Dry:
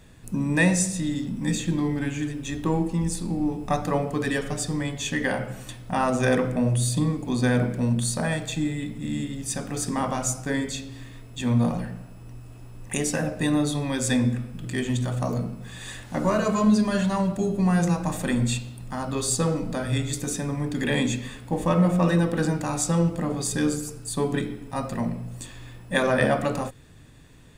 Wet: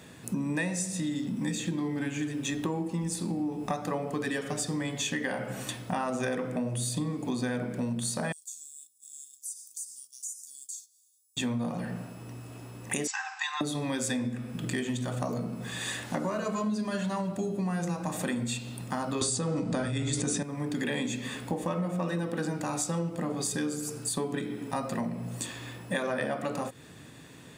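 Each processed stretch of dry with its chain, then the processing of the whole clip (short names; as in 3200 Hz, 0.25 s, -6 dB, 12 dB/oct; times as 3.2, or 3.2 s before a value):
8.32–11.37 inverse Chebyshev high-pass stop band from 2100 Hz, stop band 60 dB + compressor 5:1, threshold -40 dBFS + gate -59 dBFS, range -9 dB
13.07–13.61 brick-wall FIR band-pass 760–8100 Hz + comb 3.8 ms, depth 38%
19.21–20.43 steep low-pass 10000 Hz 96 dB/oct + low shelf 160 Hz +8.5 dB + fast leveller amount 100%
whole clip: HPF 160 Hz 12 dB/oct; compressor 6:1, threshold -34 dBFS; gain +5 dB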